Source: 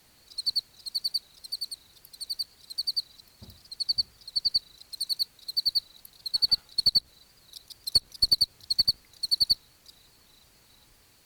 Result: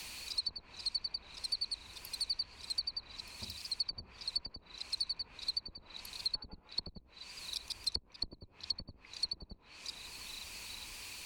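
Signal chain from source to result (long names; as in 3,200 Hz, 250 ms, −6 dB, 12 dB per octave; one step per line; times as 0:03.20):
thirty-one-band graphic EQ 125 Hz −12 dB, 1,000 Hz +8 dB, 2,500 Hz +11 dB, 12,500 Hz −8 dB
treble cut that deepens with the level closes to 410 Hz, closed at −20.5 dBFS
multiband upward and downward compressor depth 70%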